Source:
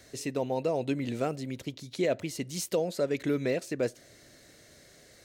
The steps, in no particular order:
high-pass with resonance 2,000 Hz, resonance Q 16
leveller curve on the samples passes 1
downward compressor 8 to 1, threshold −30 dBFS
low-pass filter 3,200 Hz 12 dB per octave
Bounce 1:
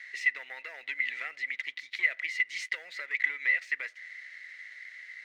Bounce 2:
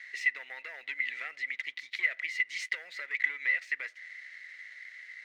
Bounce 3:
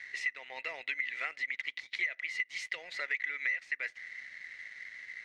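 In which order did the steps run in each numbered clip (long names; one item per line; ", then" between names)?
downward compressor, then low-pass filter, then leveller curve on the samples, then high-pass with resonance
low-pass filter, then leveller curve on the samples, then downward compressor, then high-pass with resonance
high-pass with resonance, then leveller curve on the samples, then downward compressor, then low-pass filter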